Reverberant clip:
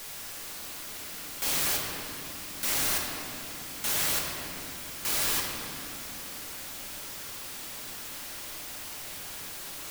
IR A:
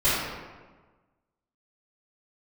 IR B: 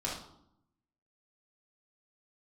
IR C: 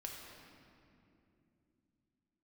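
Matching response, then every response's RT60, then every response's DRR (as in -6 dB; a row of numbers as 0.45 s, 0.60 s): C; 1.4 s, 0.75 s, 2.8 s; -16.0 dB, -5.5 dB, -1.0 dB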